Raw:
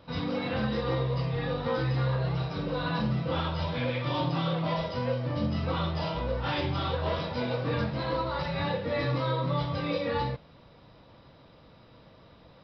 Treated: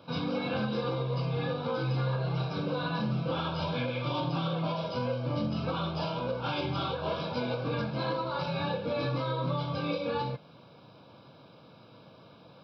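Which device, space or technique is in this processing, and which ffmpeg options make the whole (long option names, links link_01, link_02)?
PA system with an anti-feedback notch: -af "highpass=frequency=110:width=0.5412,highpass=frequency=110:width=1.3066,asuperstop=centerf=1900:order=20:qfactor=5.1,alimiter=limit=-23.5dB:level=0:latency=1:release=259,volume=1.5dB"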